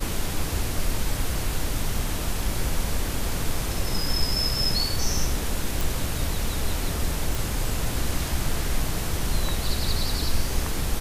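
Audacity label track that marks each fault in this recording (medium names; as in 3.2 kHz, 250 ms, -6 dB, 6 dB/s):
5.810000	5.810000	pop
7.350000	7.350000	pop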